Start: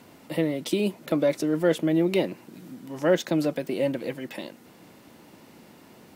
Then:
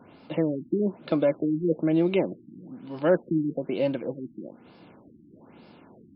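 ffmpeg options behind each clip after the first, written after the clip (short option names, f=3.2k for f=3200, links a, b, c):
-af "bandreject=f=1.9k:w=6.1,afftfilt=real='re*lt(b*sr/1024,340*pow(5400/340,0.5+0.5*sin(2*PI*1.1*pts/sr)))':imag='im*lt(b*sr/1024,340*pow(5400/340,0.5+0.5*sin(2*PI*1.1*pts/sr)))':win_size=1024:overlap=0.75"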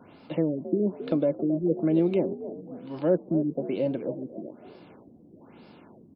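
-filter_complex "[0:a]acrossover=split=680[a][b];[a]asplit=5[c][d][e][f][g];[d]adelay=270,afreqshift=56,volume=-12dB[h];[e]adelay=540,afreqshift=112,volume=-21.1dB[i];[f]adelay=810,afreqshift=168,volume=-30.2dB[j];[g]adelay=1080,afreqshift=224,volume=-39.4dB[k];[c][h][i][j][k]amix=inputs=5:normalize=0[l];[b]acompressor=threshold=-43dB:ratio=6[m];[l][m]amix=inputs=2:normalize=0"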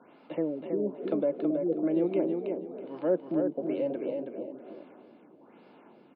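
-af "highpass=280,lowpass=2.6k,aecho=1:1:324|648|972:0.562|0.135|0.0324,volume=-2.5dB"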